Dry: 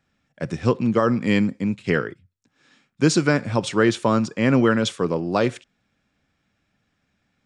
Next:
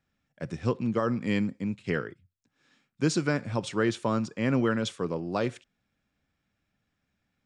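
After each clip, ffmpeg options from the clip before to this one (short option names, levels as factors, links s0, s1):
-af "lowshelf=f=84:g=5,volume=0.376"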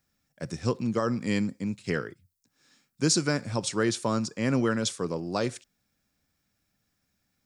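-af "aexciter=amount=3.9:drive=3.5:freq=4300"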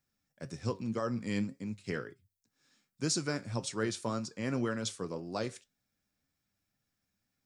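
-af "flanger=delay=7.1:depth=3.4:regen=69:speed=1.9:shape=sinusoidal,volume=0.708"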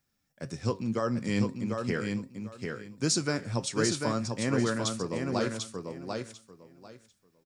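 -af "aecho=1:1:744|1488|2232:0.596|0.113|0.0215,volume=1.68"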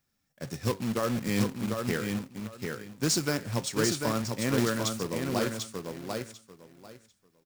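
-af "acrusher=bits=2:mode=log:mix=0:aa=0.000001"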